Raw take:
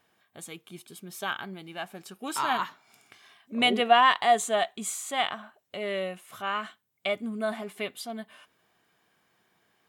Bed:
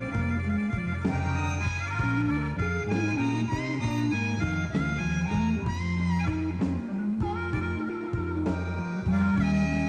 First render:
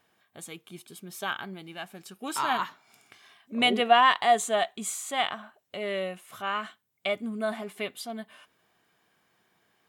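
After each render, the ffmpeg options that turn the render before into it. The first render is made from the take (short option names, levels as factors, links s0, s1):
-filter_complex "[0:a]asettb=1/sr,asplit=3[s0][s1][s2];[s0]atrim=end=1.744[s3];[s1]atrim=start=1.74:end=2.21,asetpts=PTS-STARTPTS,afade=t=in:d=0.004:c=qsin,afade=t=out:st=0.466:d=0.004:c=qsin,equalizer=f=710:w=0.55:g=-4[s4];[s2]atrim=start=2.206[s5];[s3][s4]acrossfade=d=0.004:c1=hsin:c2=qsin[s6];[s6][s5]acrossfade=d=0.004:c1=qsin:c2=hsin"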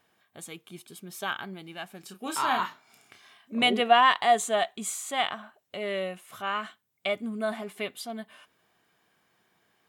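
-filter_complex "[0:a]asettb=1/sr,asplit=3[s0][s1][s2];[s0]atrim=end=2.004[s3];[s1]atrim=start=2:end=3.63,asetpts=PTS-STARTPTS,afade=t=in:d=0.004:c=qsin,afade=t=out:st=1.626:d=0.004:c=qsin,asplit=2[s4][s5];[s5]adelay=31,volume=0.447[s6];[s4][s6]amix=inputs=2:normalize=0,atrim=end_sample=71883[s7];[s2]atrim=start=3.626[s8];[s3][s7]acrossfade=d=0.004:c1=hsin:c2=qsin[s9];[s9][s8]acrossfade=d=0.004:c1=qsin:c2=hsin"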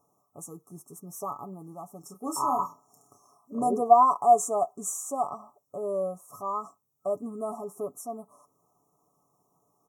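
-af "afftfilt=real='re*(1-between(b*sr/4096,1300,5400))':imag='im*(1-between(b*sr/4096,1300,5400))':win_size=4096:overlap=0.75,aecho=1:1:7:0.49"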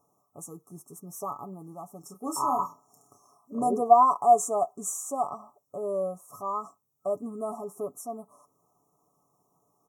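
-af anull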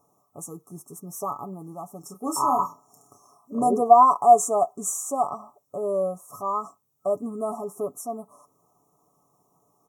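-af "volume=1.68,alimiter=limit=0.708:level=0:latency=1"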